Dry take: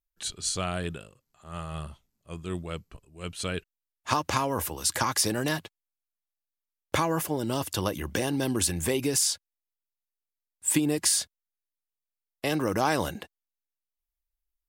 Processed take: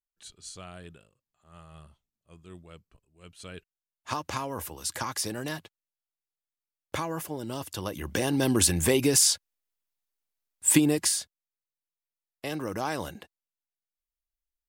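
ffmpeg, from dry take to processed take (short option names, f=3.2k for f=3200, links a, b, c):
-af "volume=4dB,afade=t=in:st=3.33:d=0.82:silence=0.421697,afade=t=in:st=7.84:d=0.7:silence=0.316228,afade=t=out:st=10.79:d=0.42:silence=0.316228"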